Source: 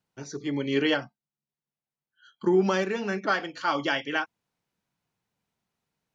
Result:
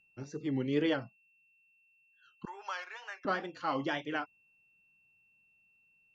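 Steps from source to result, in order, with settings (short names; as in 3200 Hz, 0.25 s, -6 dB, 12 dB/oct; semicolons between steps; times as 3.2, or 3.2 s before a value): wow and flutter 120 cents; 2.45–3.25 inverse Chebyshev high-pass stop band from 190 Hz, stop band 70 dB; tilt -2 dB/oct; whine 2700 Hz -59 dBFS; gain -7.5 dB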